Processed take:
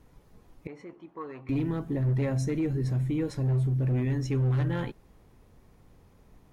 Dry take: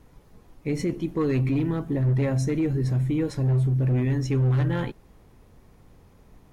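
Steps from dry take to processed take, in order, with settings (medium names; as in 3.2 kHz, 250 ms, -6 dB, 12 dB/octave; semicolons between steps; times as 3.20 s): 0.67–1.49 s: band-pass filter 1 kHz, Q 1.8; trim -4 dB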